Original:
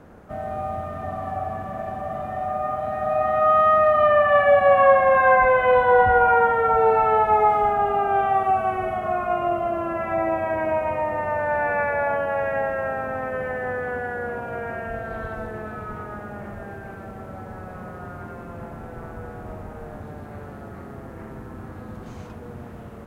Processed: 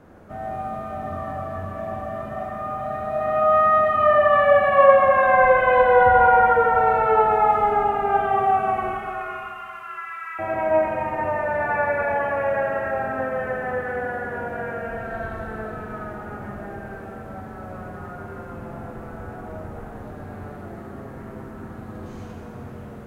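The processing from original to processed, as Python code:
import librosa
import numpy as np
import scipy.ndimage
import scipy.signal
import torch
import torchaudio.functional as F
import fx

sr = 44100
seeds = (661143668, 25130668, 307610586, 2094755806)

y = fx.steep_highpass(x, sr, hz=1100.0, slope=96, at=(8.91, 10.39))
y = fx.rev_plate(y, sr, seeds[0], rt60_s=2.5, hf_ratio=0.85, predelay_ms=0, drr_db=-1.0)
y = y * librosa.db_to_amplitude(-3.0)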